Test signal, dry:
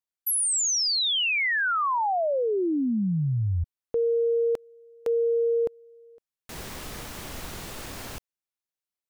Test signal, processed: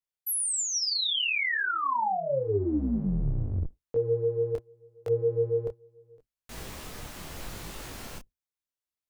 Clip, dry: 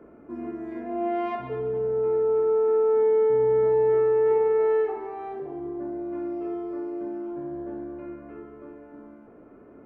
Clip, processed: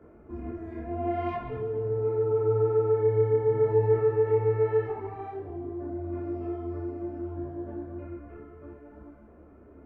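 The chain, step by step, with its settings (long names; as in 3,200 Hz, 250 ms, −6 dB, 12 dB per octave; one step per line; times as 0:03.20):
sub-octave generator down 2 octaves, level 0 dB
micro pitch shift up and down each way 27 cents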